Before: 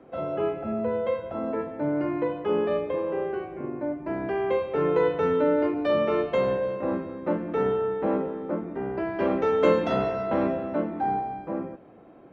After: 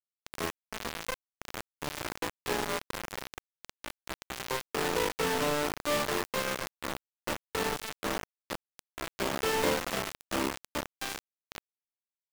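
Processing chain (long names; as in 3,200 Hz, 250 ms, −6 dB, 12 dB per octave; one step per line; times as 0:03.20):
lower of the sound and its delayed copy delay 0.48 ms
high-pass filter 190 Hz 6 dB per octave
bit reduction 4 bits
level −6 dB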